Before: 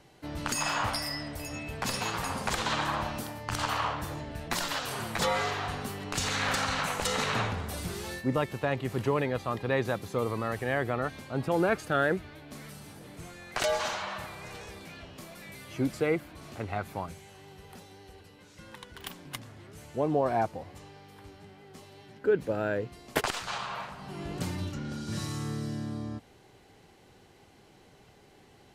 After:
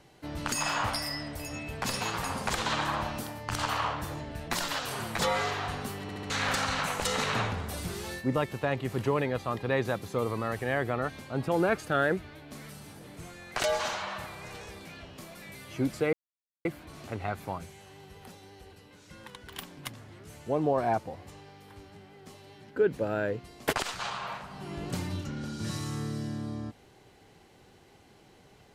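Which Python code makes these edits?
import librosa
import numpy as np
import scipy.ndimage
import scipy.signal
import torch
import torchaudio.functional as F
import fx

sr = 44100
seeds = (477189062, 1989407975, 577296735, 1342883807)

y = fx.edit(x, sr, fx.stutter_over(start_s=6.02, slice_s=0.07, count=4),
    fx.insert_silence(at_s=16.13, length_s=0.52), tone=tone)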